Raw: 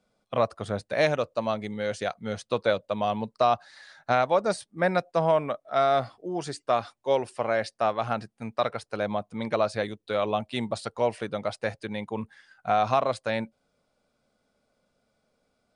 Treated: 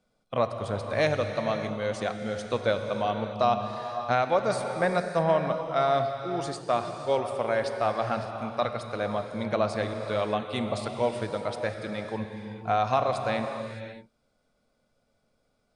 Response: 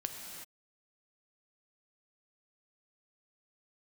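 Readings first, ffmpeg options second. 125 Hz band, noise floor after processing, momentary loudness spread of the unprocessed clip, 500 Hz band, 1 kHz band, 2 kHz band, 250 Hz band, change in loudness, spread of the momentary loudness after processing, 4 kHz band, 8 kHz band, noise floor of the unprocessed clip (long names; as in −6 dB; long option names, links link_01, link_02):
+2.0 dB, −73 dBFS, 9 LU, −0.5 dB, −0.5 dB, −0.5 dB, 0.0 dB, −0.5 dB, 8 LU, −0.5 dB, −0.5 dB, −76 dBFS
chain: -filter_complex "[0:a]asplit=2[link_01][link_02];[1:a]atrim=start_sample=2205,asetrate=27342,aresample=44100,lowshelf=frequency=83:gain=11.5[link_03];[link_02][link_03]afir=irnorm=-1:irlink=0,volume=0.5dB[link_04];[link_01][link_04]amix=inputs=2:normalize=0,volume=-8.5dB"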